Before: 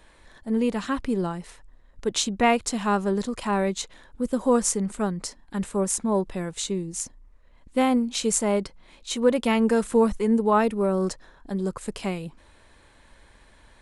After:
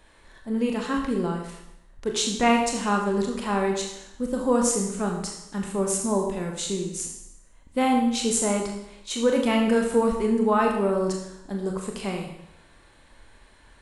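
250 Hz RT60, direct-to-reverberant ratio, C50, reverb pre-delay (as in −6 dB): 0.80 s, 0.5 dB, 5.0 dB, 26 ms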